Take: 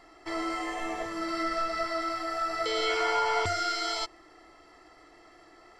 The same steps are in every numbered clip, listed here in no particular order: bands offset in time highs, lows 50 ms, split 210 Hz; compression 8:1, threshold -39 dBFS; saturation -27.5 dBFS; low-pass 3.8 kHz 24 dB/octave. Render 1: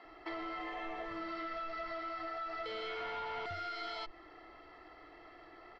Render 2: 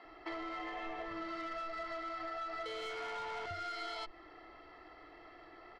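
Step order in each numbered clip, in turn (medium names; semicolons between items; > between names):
bands offset in time > saturation > low-pass > compression; low-pass > saturation > bands offset in time > compression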